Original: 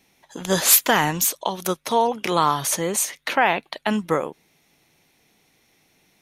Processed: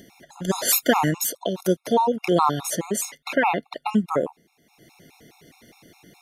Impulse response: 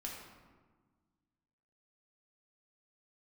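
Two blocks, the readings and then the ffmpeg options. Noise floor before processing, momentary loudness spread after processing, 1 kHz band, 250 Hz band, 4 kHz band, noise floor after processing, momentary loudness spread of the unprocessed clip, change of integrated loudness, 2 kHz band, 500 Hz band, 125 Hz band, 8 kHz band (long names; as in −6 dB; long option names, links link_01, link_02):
−63 dBFS, 8 LU, −2.0 dB, +2.5 dB, −5.0 dB, −67 dBFS, 11 LU, −2.5 dB, −4.0 dB, +0.5 dB, +1.0 dB, −5.5 dB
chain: -af "equalizer=frequency=260:width=0.41:gain=8,acompressor=mode=upward:threshold=-35dB:ratio=2.5,afftfilt=real='re*gt(sin(2*PI*4.8*pts/sr)*(1-2*mod(floor(b*sr/1024/710),2)),0)':imag='im*gt(sin(2*PI*4.8*pts/sr)*(1-2*mod(floor(b*sr/1024/710),2)),0)':win_size=1024:overlap=0.75,volume=-2dB"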